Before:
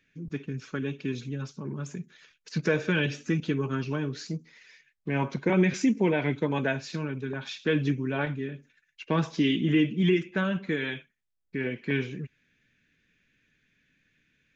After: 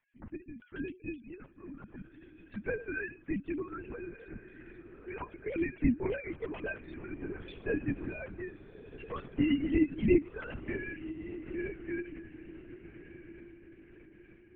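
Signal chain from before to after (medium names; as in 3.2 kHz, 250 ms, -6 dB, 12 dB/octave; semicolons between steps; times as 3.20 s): formants replaced by sine waves; echo that smears into a reverb 1350 ms, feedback 46%, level -14.5 dB; LPC vocoder at 8 kHz whisper; trim -6.5 dB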